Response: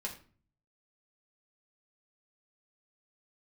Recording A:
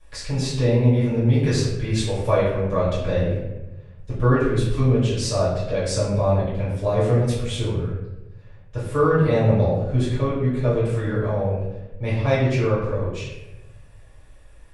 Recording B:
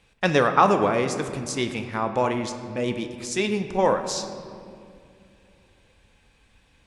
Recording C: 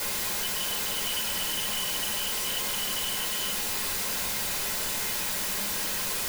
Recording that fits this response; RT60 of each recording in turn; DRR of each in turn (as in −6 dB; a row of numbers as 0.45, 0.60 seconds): C; 1.0, 2.5, 0.40 seconds; −12.5, 7.0, −1.0 decibels